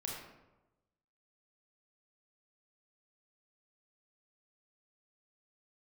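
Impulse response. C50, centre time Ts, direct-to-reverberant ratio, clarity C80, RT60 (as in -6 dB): 1.0 dB, 62 ms, -2.5 dB, 3.5 dB, 1.0 s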